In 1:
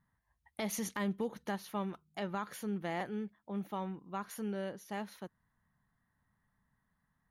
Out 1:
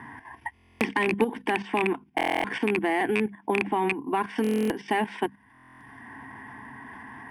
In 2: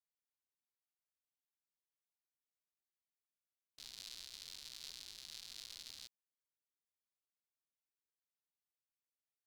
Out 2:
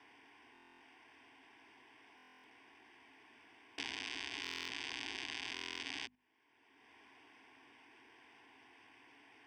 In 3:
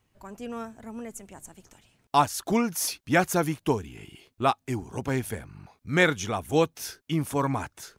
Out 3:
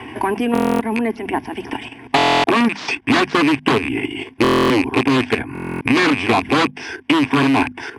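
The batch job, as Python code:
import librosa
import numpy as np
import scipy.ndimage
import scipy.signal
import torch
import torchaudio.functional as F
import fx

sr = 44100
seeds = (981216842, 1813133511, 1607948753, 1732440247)

p1 = fx.rattle_buzz(x, sr, strikes_db=-39.0, level_db=-23.0)
p2 = fx.fixed_phaser(p1, sr, hz=840.0, stages=8)
p3 = fx.dynamic_eq(p2, sr, hz=990.0, q=2.1, threshold_db=-46.0, ratio=4.0, max_db=-5)
p4 = fx.fold_sine(p3, sr, drive_db=20, ceiling_db=-10.0)
p5 = p3 + F.gain(torch.from_numpy(p4), -8.0).numpy()
p6 = (np.kron(scipy.signal.resample_poly(p5, 1, 4), np.eye(4)[0]) * 4)[:len(p5)]
p7 = fx.cabinet(p6, sr, low_hz=130.0, low_slope=12, high_hz=4600.0, hz=(140.0, 270.0, 1100.0), db=(6, 8, 6))
p8 = fx.hum_notches(p7, sr, base_hz=50, count=5)
p9 = fx.level_steps(p8, sr, step_db=10)
p10 = fx.buffer_glitch(p9, sr, at_s=(0.53, 2.16, 4.42, 5.53), block=1024, repeats=11)
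p11 = fx.band_squash(p10, sr, depth_pct=70)
y = F.gain(torch.from_numpy(p11), 6.0).numpy()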